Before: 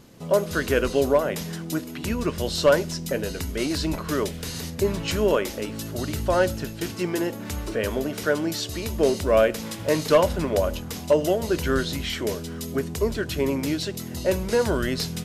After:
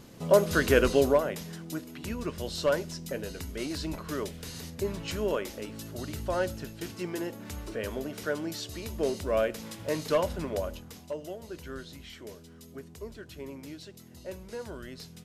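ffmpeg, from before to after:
-af "afade=t=out:st=0.86:d=0.53:silence=0.375837,afade=t=out:st=10.48:d=0.66:silence=0.354813"

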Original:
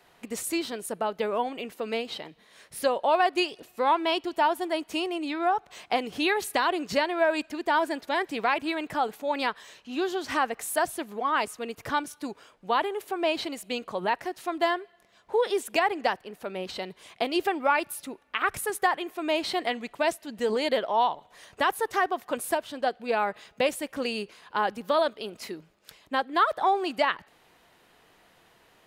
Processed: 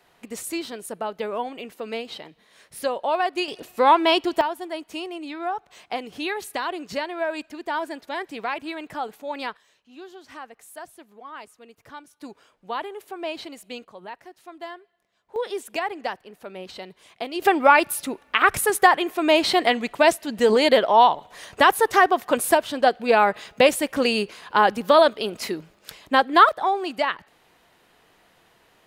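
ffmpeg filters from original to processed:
-af "asetnsamples=n=441:p=0,asendcmd='3.48 volume volume 7.5dB;4.41 volume volume -3dB;9.57 volume volume -13.5dB;12.2 volume volume -4.5dB;13.85 volume volume -11.5dB;15.36 volume volume -3dB;17.42 volume volume 9dB;26.49 volume volume 1dB',volume=-0.5dB"

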